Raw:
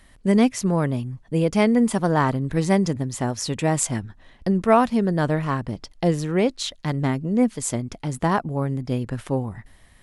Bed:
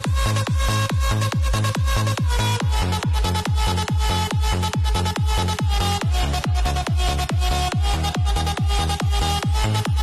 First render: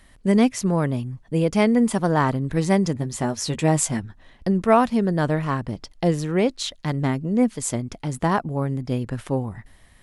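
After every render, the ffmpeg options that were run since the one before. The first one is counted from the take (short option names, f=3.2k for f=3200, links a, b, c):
-filter_complex "[0:a]asettb=1/sr,asplit=3[a][b][c];[a]atrim=end=2.954[d];[b]atrim=start=2.95:end=4,asetpts=PTS-STARTPTS,afade=t=in:d=0.004:c=qsin,afade=t=out:st=1.046:d=0.004:c=qsin,asplit=2[e][f];[f]adelay=13,volume=-7dB[g];[e][g]amix=inputs=2:normalize=0,atrim=end_sample=46305[h];[c]atrim=start=3.996[i];[d][h]acrossfade=d=0.004:c1=hsin:c2=qsin[j];[j][i]acrossfade=d=0.004:c1=qsin:c2=hsin"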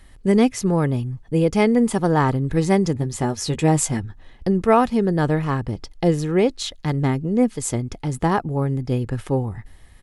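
-af "lowshelf=f=330:g=5,aecho=1:1:2.4:0.31"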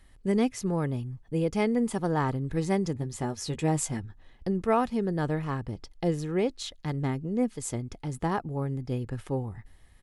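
-af "volume=-9dB"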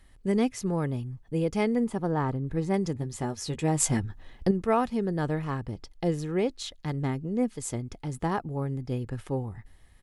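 -filter_complex "[0:a]asettb=1/sr,asplit=3[a][b][c];[a]atrim=end=1.844[d];[b]atrim=start=1.84:end=2.74,asetpts=PTS-STARTPTS,afade=t=in:d=0.004:c=qsin,afade=t=out:st=0.896:d=0.004:c=qsin,highshelf=f=2.2k:g=-9.5[e];[c]atrim=start=2.736[f];[d][e]acrossfade=d=0.004:c1=hsin:c2=qsin[g];[g][f]acrossfade=d=0.004:c1=qsin:c2=hsin,asplit=3[h][i][j];[h]atrim=end=3.802[k];[i]atrim=start=3.798:end=4.512,asetpts=PTS-STARTPTS,volume=6.5dB[l];[j]atrim=start=4.508[m];[k][l]acrossfade=d=0.004:c1=hsin:c2=hsin[n];[n][m]acrossfade=d=0.004:c1=hsin:c2=hsin"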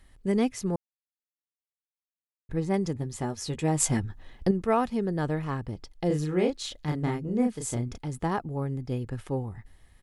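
-filter_complex "[0:a]asettb=1/sr,asplit=3[a][b][c];[a]atrim=end=6.074[d];[b]atrim=start=6.07:end=7.98,asetpts=PTS-STARTPTS,afade=t=in:d=0.004:c=qsin,afade=t=out:st=1.906:d=0.004:c=qsin,asplit=2[e][f];[f]adelay=33,volume=-3dB[g];[e][g]amix=inputs=2:normalize=0,atrim=end_sample=84231[h];[c]atrim=start=7.976[i];[d][h]acrossfade=d=0.004:c1=hsin:c2=qsin[j];[j][i]acrossfade=d=0.004:c1=qsin:c2=hsin,asplit=3[k][l][m];[k]atrim=end=0.76,asetpts=PTS-STARTPTS,afade=t=out:st=0.756:d=0.004:c=hsin[n];[l]atrim=start=0.76:end=2.49,asetpts=PTS-STARTPTS,volume=0[o];[m]atrim=start=2.49,asetpts=PTS-STARTPTS,afade=t=in:d=0.004:c=hsin[p];[n][o][p]concat=n=3:v=0:a=1"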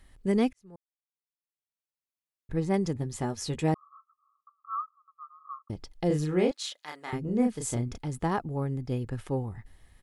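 -filter_complex "[0:a]asettb=1/sr,asplit=3[a][b][c];[a]atrim=end=3.744[d];[b]atrim=start=3.74:end=5.7,asetpts=PTS-STARTPTS,afade=t=in:d=0.004:c=qsin,afade=t=out:st=1.956:d=0.004:c=qsin,asuperpass=centerf=1200:order=20:qfactor=4.7[e];[c]atrim=start=5.696[f];[d][e]acrossfade=d=0.004:c1=hsin:c2=qsin[g];[g][f]acrossfade=d=0.004:c1=qsin:c2=hsin,asettb=1/sr,asplit=3[h][i][j];[h]atrim=end=6.514[k];[i]atrim=start=6.51:end=7.13,asetpts=PTS-STARTPTS,afade=t=in:d=0.004:c=qsin,afade=t=out:st=0.616:d=0.004:c=qsin,highpass=890[l];[j]atrim=start=7.126[m];[k][l]acrossfade=d=0.004:c1=hsin:c2=qsin[n];[n][m]acrossfade=d=0.004:c1=qsin:c2=hsin,asplit=2[o][p];[o]atrim=end=0.53,asetpts=PTS-STARTPTS,afade=t=out:st=0.526:d=0.004:c=hsin[q];[p]atrim=start=0.53,asetpts=PTS-STARTPTS,afade=t=in:d=2.05[r];[q][r]concat=n=2:v=0:a=1"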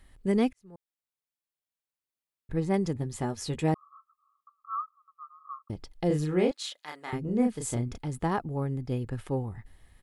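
-af "equalizer=f=5.9k:w=2.3:g=-3"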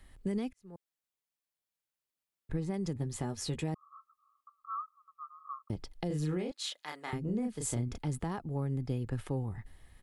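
-filter_complex "[0:a]alimiter=limit=-23dB:level=0:latency=1:release=221,acrossover=split=230|3000[a][b][c];[b]acompressor=threshold=-38dB:ratio=2.5[d];[a][d][c]amix=inputs=3:normalize=0"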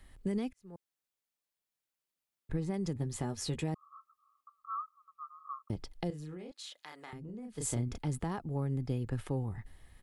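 -filter_complex "[0:a]asettb=1/sr,asplit=3[a][b][c];[a]atrim=end=6.104[d];[b]atrim=start=6.1:end=7.58,asetpts=PTS-STARTPTS,afade=t=in:d=0.004:c=qsin,afade=t=out:st=1.476:d=0.004:c=qsin,acompressor=threshold=-47dB:ratio=2.5:attack=3.2:release=140:knee=1:detection=peak[e];[c]atrim=start=7.576[f];[d][e]acrossfade=d=0.004:c1=hsin:c2=qsin[g];[g][f]acrossfade=d=0.004:c1=qsin:c2=hsin"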